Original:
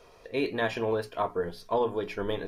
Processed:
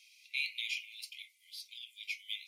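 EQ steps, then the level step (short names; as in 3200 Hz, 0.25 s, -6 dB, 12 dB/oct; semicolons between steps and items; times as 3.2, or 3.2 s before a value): brick-wall FIR high-pass 2000 Hz; +3.0 dB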